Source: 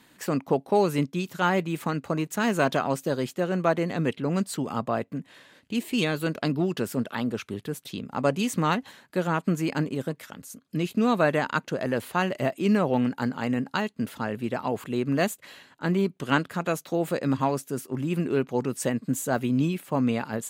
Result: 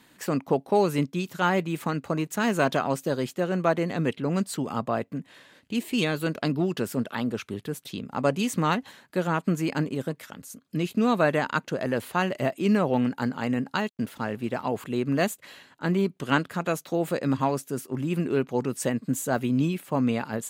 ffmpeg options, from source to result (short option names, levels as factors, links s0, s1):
-filter_complex "[0:a]asplit=3[s0][s1][s2];[s0]afade=t=out:st=13.88:d=0.02[s3];[s1]aeval=exprs='sgn(val(0))*max(abs(val(0))-0.002,0)':c=same,afade=t=in:st=13.88:d=0.02,afade=t=out:st=14.61:d=0.02[s4];[s2]afade=t=in:st=14.61:d=0.02[s5];[s3][s4][s5]amix=inputs=3:normalize=0"